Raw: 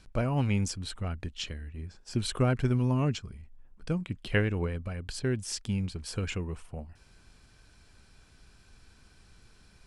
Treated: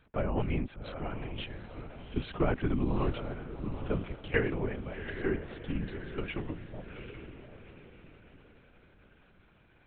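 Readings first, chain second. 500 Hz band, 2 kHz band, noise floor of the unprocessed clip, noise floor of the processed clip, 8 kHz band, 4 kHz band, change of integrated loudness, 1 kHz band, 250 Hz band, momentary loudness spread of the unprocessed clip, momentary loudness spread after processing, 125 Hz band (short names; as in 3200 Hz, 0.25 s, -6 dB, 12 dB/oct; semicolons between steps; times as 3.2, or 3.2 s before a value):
+0.5 dB, -1.0 dB, -59 dBFS, -63 dBFS, under -40 dB, -8.0 dB, -4.0 dB, -0.5 dB, -2.5 dB, 15 LU, 16 LU, -6.5 dB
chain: BPF 160–2800 Hz; diffused feedback echo 0.787 s, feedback 41%, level -8.5 dB; LPC vocoder at 8 kHz whisper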